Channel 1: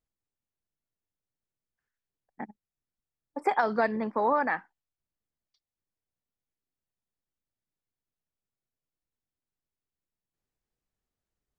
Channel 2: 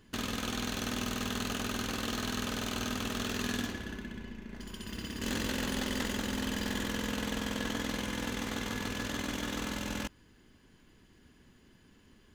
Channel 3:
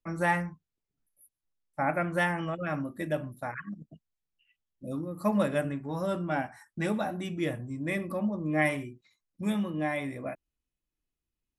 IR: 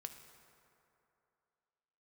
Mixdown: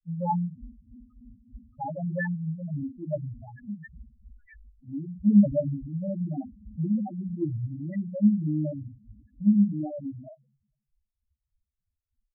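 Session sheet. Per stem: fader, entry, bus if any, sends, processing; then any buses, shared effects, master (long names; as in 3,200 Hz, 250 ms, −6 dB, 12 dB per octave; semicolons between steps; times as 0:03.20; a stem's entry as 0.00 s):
+3.0 dB, 0.00 s, no send, harmonic-percussive split with one part muted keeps percussive; Chebyshev band-stop filter 130–1,800 Hz, order 2; flat-topped bell 1,100 Hz −12.5 dB
−3.5 dB, 0.05 s, send −14 dB, two-band tremolo in antiphase 3.3 Hz, depth 70%, crossover 780 Hz
−0.5 dB, 0.00 s, send −5.5 dB, no processing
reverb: on, RT60 2.8 s, pre-delay 3 ms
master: low-shelf EQ 180 Hz +10 dB; spectral peaks only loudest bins 2; multiband upward and downward expander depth 70%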